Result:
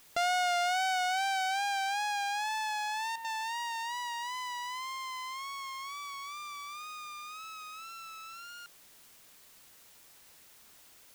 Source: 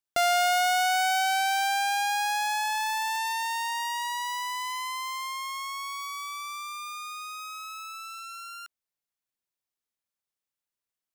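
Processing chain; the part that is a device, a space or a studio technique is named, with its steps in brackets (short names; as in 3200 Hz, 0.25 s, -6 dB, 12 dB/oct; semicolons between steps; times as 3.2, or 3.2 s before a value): worn cassette (LPF 7900 Hz 12 dB/oct; wow and flutter; level dips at 3.16, 84 ms -7 dB; white noise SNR 22 dB); gain -5.5 dB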